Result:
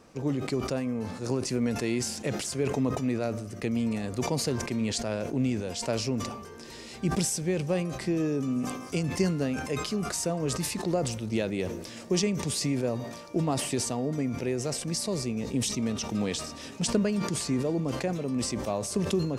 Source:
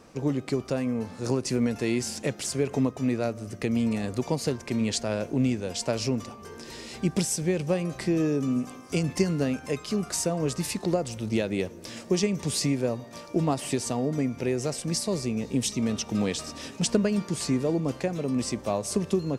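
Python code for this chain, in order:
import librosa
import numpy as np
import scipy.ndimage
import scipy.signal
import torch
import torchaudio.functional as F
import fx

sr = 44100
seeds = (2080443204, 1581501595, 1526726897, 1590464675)

y = fx.sustainer(x, sr, db_per_s=53.0)
y = F.gain(torch.from_numpy(y), -3.0).numpy()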